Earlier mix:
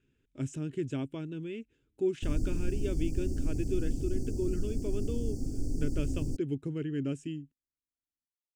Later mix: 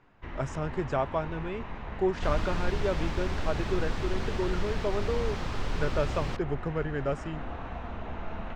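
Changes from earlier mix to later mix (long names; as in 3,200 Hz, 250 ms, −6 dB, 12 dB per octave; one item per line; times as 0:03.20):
first sound: unmuted
second sound: remove linear-phase brick-wall band-stop 840–4,400 Hz
reverb: on, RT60 0.75 s
master: remove drawn EQ curve 130 Hz 0 dB, 190 Hz −5 dB, 270 Hz +8 dB, 670 Hz −20 dB, 1,100 Hz −21 dB, 3,000 Hz +1 dB, 4,600 Hz −10 dB, 8,200 Hz +6 dB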